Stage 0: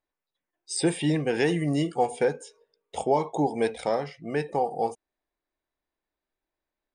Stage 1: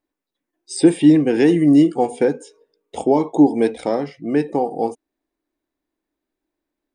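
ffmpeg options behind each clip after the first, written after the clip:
-af "equalizer=f=290:w=1.6:g=14,volume=2dB"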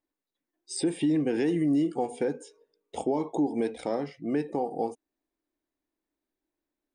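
-af "alimiter=limit=-12dB:level=0:latency=1:release=164,volume=-6.5dB"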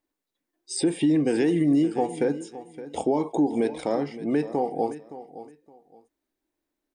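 -af "aecho=1:1:567|1134:0.178|0.0409,volume=4dB"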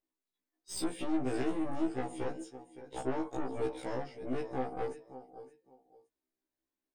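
-af "aeval=exprs='(tanh(15.8*val(0)+0.65)-tanh(0.65))/15.8':c=same,afftfilt=real='re*1.73*eq(mod(b,3),0)':imag='im*1.73*eq(mod(b,3),0)':win_size=2048:overlap=0.75,volume=-3.5dB"

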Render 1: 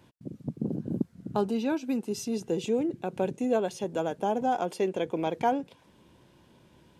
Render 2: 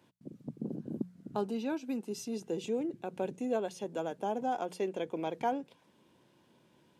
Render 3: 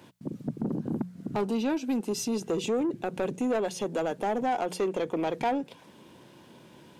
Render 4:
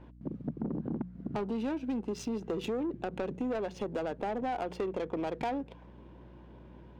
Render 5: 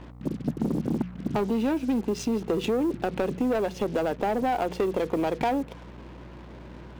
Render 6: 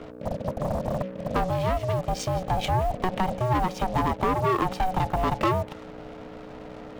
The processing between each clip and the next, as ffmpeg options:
-af "highpass=140,bandreject=f=60:t=h:w=6,bandreject=f=120:t=h:w=6,bandreject=f=180:t=h:w=6,volume=-6dB"
-filter_complex "[0:a]asplit=2[a][b];[b]acompressor=threshold=-41dB:ratio=6,volume=2.5dB[c];[a][c]amix=inputs=2:normalize=0,asoftclip=type=tanh:threshold=-28dB,volume=6dB"
-af "acompressor=threshold=-29dB:ratio=6,aeval=exprs='val(0)+0.00282*(sin(2*PI*60*n/s)+sin(2*PI*2*60*n/s)/2+sin(2*PI*3*60*n/s)/3+sin(2*PI*4*60*n/s)/4+sin(2*PI*5*60*n/s)/5)':c=same,adynamicsmooth=sensitivity=7.5:basefreq=1.6k,volume=-1.5dB"
-af "acrusher=bits=8:mix=0:aa=0.5,volume=8dB"
-filter_complex "[0:a]acrossover=split=400|1400|6500[a][b][c][d];[a]asoftclip=type=hard:threshold=-29dB[e];[e][b][c][d]amix=inputs=4:normalize=0,aeval=exprs='val(0)*sin(2*PI*370*n/s)':c=same,volume=5.5dB"

